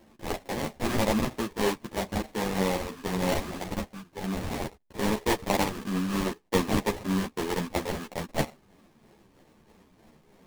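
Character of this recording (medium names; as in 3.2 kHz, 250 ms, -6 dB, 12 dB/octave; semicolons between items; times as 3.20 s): a buzz of ramps at a fixed pitch in blocks of 16 samples; phasing stages 6, 3.1 Hz, lowest notch 620–1800 Hz; aliases and images of a low sample rate 1.4 kHz, jitter 20%; a shimmering, thickened sound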